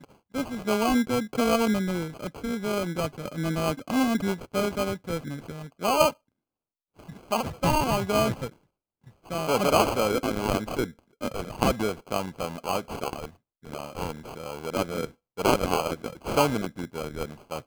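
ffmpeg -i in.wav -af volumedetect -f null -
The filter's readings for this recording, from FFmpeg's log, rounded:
mean_volume: -28.0 dB
max_volume: -6.0 dB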